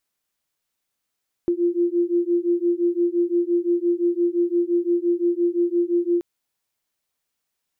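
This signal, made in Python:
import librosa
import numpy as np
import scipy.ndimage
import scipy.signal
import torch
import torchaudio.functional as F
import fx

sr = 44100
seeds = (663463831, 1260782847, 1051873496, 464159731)

y = fx.two_tone_beats(sr, length_s=4.73, hz=344.0, beat_hz=5.8, level_db=-21.0)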